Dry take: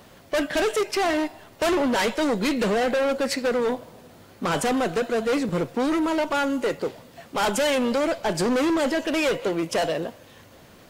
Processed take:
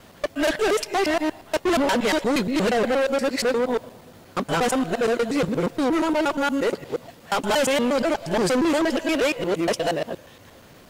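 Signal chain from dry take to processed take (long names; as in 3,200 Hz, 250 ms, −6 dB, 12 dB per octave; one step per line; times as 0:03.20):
reversed piece by piece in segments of 118 ms
level +1.5 dB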